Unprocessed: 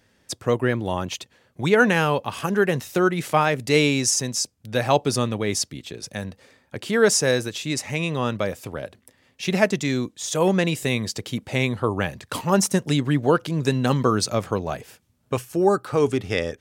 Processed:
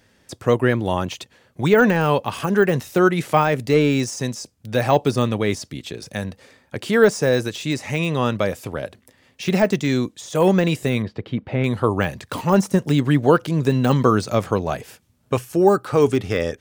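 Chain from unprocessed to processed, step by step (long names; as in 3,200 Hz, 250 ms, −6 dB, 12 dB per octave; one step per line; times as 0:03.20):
de-essing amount 80%
0:11.02–0:11.64: high-frequency loss of the air 390 metres
level +4 dB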